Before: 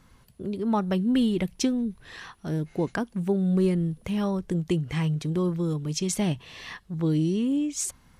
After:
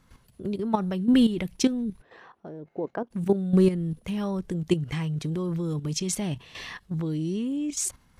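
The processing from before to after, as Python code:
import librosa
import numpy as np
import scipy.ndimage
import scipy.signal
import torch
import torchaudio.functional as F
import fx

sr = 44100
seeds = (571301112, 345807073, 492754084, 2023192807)

y = fx.bandpass_q(x, sr, hz=550.0, q=1.3, at=(2.01, 3.1), fade=0.02)
y = fx.level_steps(y, sr, step_db=11)
y = y * 10.0 ** (5.0 / 20.0)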